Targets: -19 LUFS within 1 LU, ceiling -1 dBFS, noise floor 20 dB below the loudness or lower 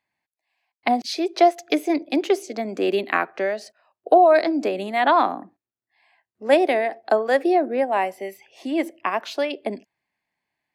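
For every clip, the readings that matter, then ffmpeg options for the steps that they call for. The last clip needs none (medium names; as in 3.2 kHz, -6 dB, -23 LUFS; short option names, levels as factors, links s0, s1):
loudness -21.5 LUFS; peak level -4.0 dBFS; loudness target -19.0 LUFS
-> -af "volume=1.33"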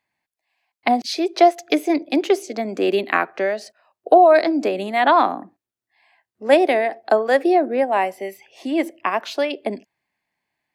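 loudness -19.0 LUFS; peak level -1.5 dBFS; noise floor -89 dBFS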